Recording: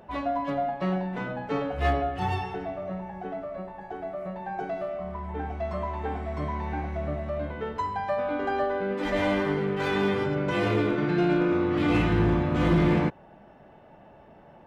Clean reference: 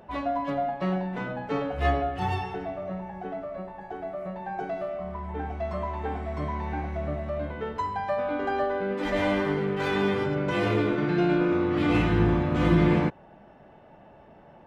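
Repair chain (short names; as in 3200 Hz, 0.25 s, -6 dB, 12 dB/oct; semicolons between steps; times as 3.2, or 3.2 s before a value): clip repair -16 dBFS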